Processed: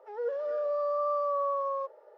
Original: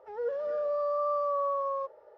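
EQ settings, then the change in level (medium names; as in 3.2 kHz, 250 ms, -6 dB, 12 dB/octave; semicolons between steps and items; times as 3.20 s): high-pass 300 Hz 24 dB/octave; 0.0 dB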